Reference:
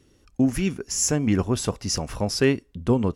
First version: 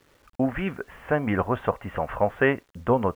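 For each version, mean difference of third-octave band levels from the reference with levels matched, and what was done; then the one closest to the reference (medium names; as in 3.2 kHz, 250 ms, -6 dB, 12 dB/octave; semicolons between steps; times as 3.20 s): 7.5 dB: steep low-pass 3.3 kHz 96 dB/octave; high-order bell 1 kHz +12.5 dB 2.3 oct; bit crusher 9-bit; trim -5 dB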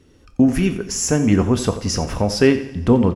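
3.5 dB: recorder AGC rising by 10 dB/s; treble shelf 4.5 kHz -7.5 dB; feedback delay 88 ms, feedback 46%, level -15 dB; two-slope reverb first 0.47 s, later 3.1 s, from -22 dB, DRR 8.5 dB; trim +5.5 dB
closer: second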